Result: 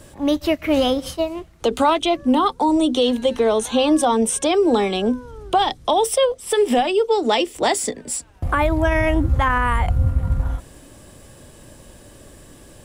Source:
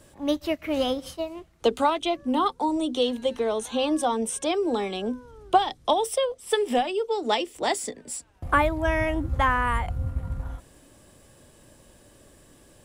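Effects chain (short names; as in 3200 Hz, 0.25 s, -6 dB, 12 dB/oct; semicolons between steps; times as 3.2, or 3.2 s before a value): low shelf 150 Hz +3.5 dB; limiter -17.5 dBFS, peak gain reduction 10.5 dB; gain +8.5 dB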